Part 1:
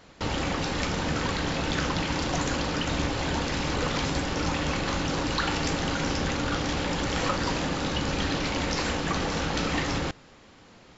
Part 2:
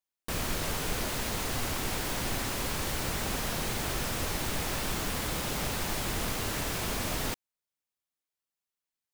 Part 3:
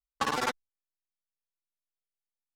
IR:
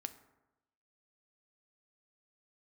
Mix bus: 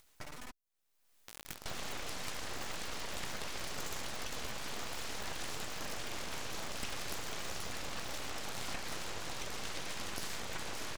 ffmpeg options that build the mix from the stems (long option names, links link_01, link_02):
-filter_complex "[0:a]highpass=150,adelay=1450,volume=-1dB[link_01];[1:a]acrusher=bits=3:mix=0:aa=0.000001,adelay=1000,volume=-18.5dB[link_02];[2:a]equalizer=frequency=450:width=1.2:gain=8,alimiter=limit=-24dB:level=0:latency=1:release=37,acompressor=threshold=-41dB:ratio=5,volume=-3dB[link_03];[link_01][link_02]amix=inputs=2:normalize=0,acompressor=threshold=-44dB:ratio=2,volume=0dB[link_04];[link_03][link_04]amix=inputs=2:normalize=0,highshelf=frequency=7600:gain=12,acompressor=mode=upward:threshold=-47dB:ratio=2.5,aeval=exprs='abs(val(0))':channel_layout=same"